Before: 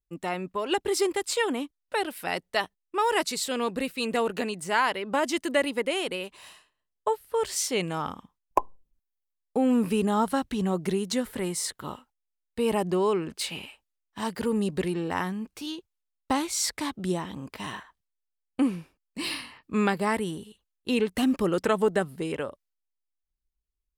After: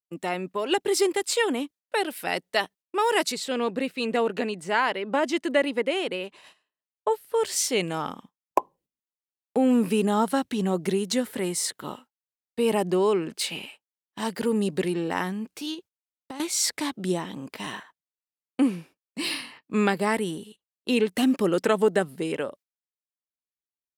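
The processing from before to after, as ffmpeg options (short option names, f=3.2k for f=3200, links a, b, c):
-filter_complex "[0:a]asettb=1/sr,asplit=3[a][b][c];[a]atrim=end=3.324[d];[b]atrim=start=3.32:end=7.11,asetpts=PTS-STARTPTS,afade=t=in:d=0.004:c=qsin,afade=t=out:st=3.786:d=0.004:c=qsin,aemphasis=mode=reproduction:type=50kf[e];[c]atrim=start=7.106[f];[d][e]acrossfade=d=0.004:c1=hsin:c2=qsin[g];[g][f]acrossfade=d=0.004:c1=qsin:c2=hsin,asettb=1/sr,asplit=3[h][i][j];[h]atrim=end=15.744[k];[i]atrim=start=15.74:end=16.4,asetpts=PTS-STARTPTS,afade=t=in:d=0.004:c=qsin,afade=t=out:st=0.656:d=0.004:c=qsin,acompressor=threshold=-37dB:ratio=6:attack=3.2:release=140:knee=1:detection=peak[l];[j]atrim=start=16.396[m];[k][l]acrossfade=d=0.004:c1=hsin:c2=qsin[n];[n][m]acrossfade=d=0.004:c1=qsin:c2=hsin,agate=range=-14dB:threshold=-50dB:ratio=16:detection=peak,highpass=170,equalizer=f=1.1k:t=o:w=0.77:g=-3.5,volume=3dB"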